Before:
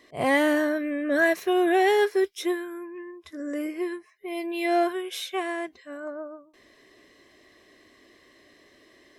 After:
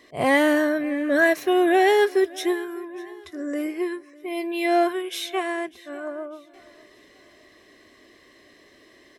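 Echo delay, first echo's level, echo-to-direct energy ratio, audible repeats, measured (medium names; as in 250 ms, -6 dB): 599 ms, -22.0 dB, -21.0 dB, 2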